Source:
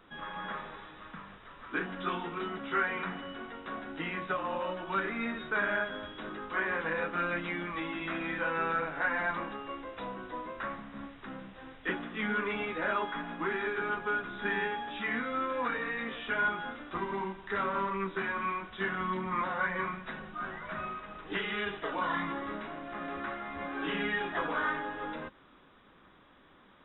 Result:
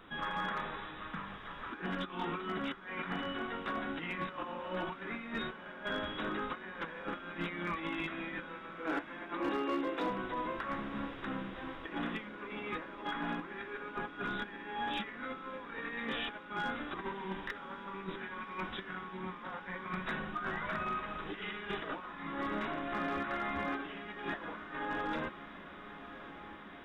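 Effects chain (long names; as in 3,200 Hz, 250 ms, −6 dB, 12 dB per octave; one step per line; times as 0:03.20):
parametric band 570 Hz −2 dB 0.97 octaves
compressor whose output falls as the input rises −39 dBFS, ratio −0.5
0:08.74–0:10.10: high-pass with resonance 320 Hz, resonance Q 3.5
hard clipping −28.5 dBFS, distortion −24 dB
feedback delay with all-pass diffusion 1,151 ms, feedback 80%, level −15 dB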